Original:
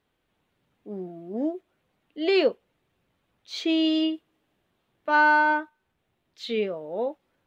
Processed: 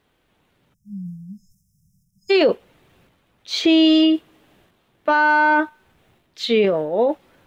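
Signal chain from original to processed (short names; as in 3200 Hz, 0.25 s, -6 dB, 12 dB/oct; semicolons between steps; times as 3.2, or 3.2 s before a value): transient shaper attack +3 dB, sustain +8 dB; spectral delete 0.74–2.31, 200–5000 Hz; maximiser +15.5 dB; gain -6.5 dB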